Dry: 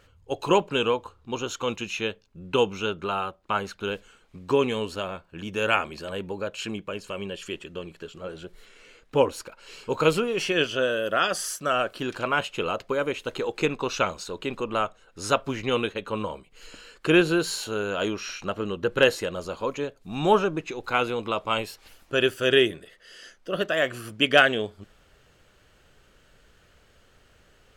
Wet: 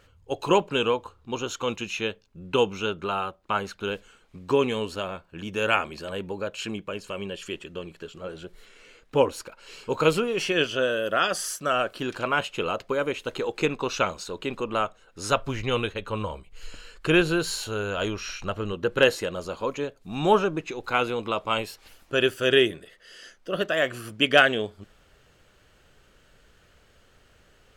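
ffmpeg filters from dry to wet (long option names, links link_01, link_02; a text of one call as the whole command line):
ffmpeg -i in.wav -filter_complex "[0:a]asplit=3[link_01][link_02][link_03];[link_01]afade=type=out:start_time=15.3:duration=0.02[link_04];[link_02]asubboost=boost=3.5:cutoff=110,afade=type=in:start_time=15.3:duration=0.02,afade=type=out:start_time=18.72:duration=0.02[link_05];[link_03]afade=type=in:start_time=18.72:duration=0.02[link_06];[link_04][link_05][link_06]amix=inputs=3:normalize=0" out.wav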